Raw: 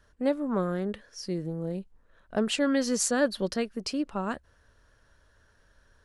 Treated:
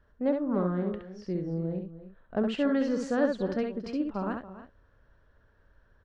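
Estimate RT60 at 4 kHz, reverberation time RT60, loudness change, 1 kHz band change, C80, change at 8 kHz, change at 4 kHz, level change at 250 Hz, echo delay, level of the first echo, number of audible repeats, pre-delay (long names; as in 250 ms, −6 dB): no reverb audible, no reverb audible, −1.0 dB, −2.0 dB, no reverb audible, below −20 dB, −11.0 dB, +0.5 dB, 67 ms, −5.0 dB, 3, no reverb audible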